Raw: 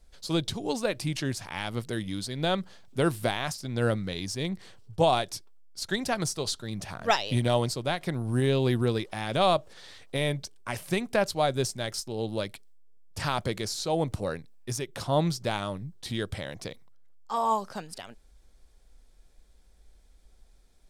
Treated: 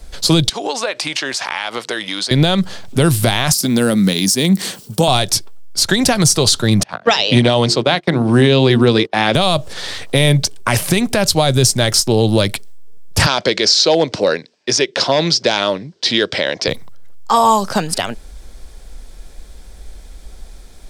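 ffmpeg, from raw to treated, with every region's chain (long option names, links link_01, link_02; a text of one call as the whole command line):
ffmpeg -i in.wav -filter_complex "[0:a]asettb=1/sr,asplit=3[link_01][link_02][link_03];[link_01]atrim=end=0.494[link_04];[link_02]atrim=start=0.49:end=2.31,asetpts=PTS-STARTPTS,afade=type=in:duration=0.004:curve=qsin,afade=type=out:start_time=1.816:duration=0.004:curve=qsin,highpass=650,lowpass=6400,acompressor=threshold=-39dB:ratio=5:attack=3.2:release=140:knee=1:detection=peak[link_05];[link_03]atrim=start=2.306[link_06];[link_04][link_05]acrossfade=duration=0.004:curve1=hsin:curve2=qsin[link_07];[link_07][link_06]acrossfade=duration=0.004:curve1=qsin:curve2=hsin,asettb=1/sr,asplit=3[link_08][link_09][link_10];[link_08]atrim=end=3.534[link_11];[link_09]atrim=start=3.53:end=5.08,asetpts=PTS-STARTPTS,afade=type=in:duration=0.004:curve=qsin,afade=type=out:start_time=1.546:duration=0.004:curve=qsin,aemphasis=mode=production:type=75fm,acompressor=threshold=-39dB:ratio=2.5:attack=3.2:release=140:knee=1:detection=peak,highpass=frequency=200:width_type=q:width=2.5[link_12];[link_10]atrim=start=5.076[link_13];[link_11][link_12]acrossfade=duration=0.004:curve1=hsin:curve2=qsin[link_14];[link_14][link_13]acrossfade=duration=0.004:curve1=qsin:curve2=hsin,asettb=1/sr,asplit=3[link_15][link_16][link_17];[link_15]atrim=end=6.834[link_18];[link_16]atrim=start=6.83:end=9.35,asetpts=PTS-STARTPTS,afade=type=in:duration=0.004:curve=qsin,afade=type=out:start_time=2.516:duration=0.004:curve=qsin,bandreject=frequency=50:width_type=h:width=6,bandreject=frequency=100:width_type=h:width=6,bandreject=frequency=150:width_type=h:width=6,bandreject=frequency=200:width_type=h:width=6,bandreject=frequency=250:width_type=h:width=6,bandreject=frequency=300:width_type=h:width=6,bandreject=frequency=350:width_type=h:width=6,bandreject=frequency=400:width_type=h:width=6,bandreject=frequency=450:width_type=h:width=6,agate=range=-27dB:threshold=-38dB:ratio=16:release=100:detection=peak,highpass=200,lowpass=4800[link_19];[link_17]atrim=start=9.346[link_20];[link_18][link_19]acrossfade=duration=0.004:curve1=hsin:curve2=qsin[link_21];[link_21][link_20]acrossfade=duration=0.004:curve1=qsin:curve2=hsin,asettb=1/sr,asplit=3[link_22][link_23][link_24];[link_22]atrim=end=13.264[link_25];[link_23]atrim=start=13.26:end=16.68,asetpts=PTS-STARTPTS,afade=type=in:duration=0.004:curve=qsin,afade=type=out:start_time=3.416:duration=0.004:curve=qsin,asoftclip=type=hard:threshold=-19dB,highpass=380,equalizer=frequency=800:width_type=q:width=4:gain=-6,equalizer=frequency=1200:width_type=q:width=4:gain=-7,equalizer=frequency=5000:width_type=q:width=4:gain=5,lowpass=frequency=5900:width=0.5412,lowpass=frequency=5900:width=1.3066[link_26];[link_24]atrim=start=16.676[link_27];[link_25][link_26]acrossfade=duration=0.004:curve1=hsin:curve2=qsin[link_28];[link_28][link_27]acrossfade=duration=0.004:curve1=qsin:curve2=hsin,acrossover=split=170|3000[link_29][link_30][link_31];[link_30]acompressor=threshold=-34dB:ratio=3[link_32];[link_29][link_32][link_31]amix=inputs=3:normalize=0,alimiter=level_in=23.5dB:limit=-1dB:release=50:level=0:latency=1,volume=-1dB" out.wav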